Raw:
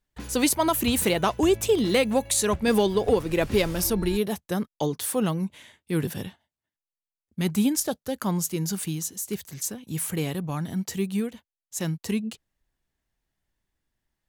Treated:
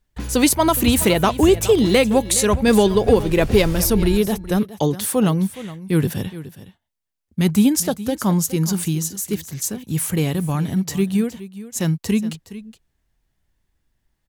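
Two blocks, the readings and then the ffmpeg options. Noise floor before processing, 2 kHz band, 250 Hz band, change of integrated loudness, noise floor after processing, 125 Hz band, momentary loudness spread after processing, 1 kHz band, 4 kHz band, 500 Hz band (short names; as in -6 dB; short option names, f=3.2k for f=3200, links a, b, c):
under -85 dBFS, +5.5 dB, +8.0 dB, +7.0 dB, -73 dBFS, +9.0 dB, 11 LU, +6.0 dB, +5.5 dB, +6.5 dB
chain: -af "lowshelf=f=150:g=7.5,aecho=1:1:417:0.168,volume=5.5dB"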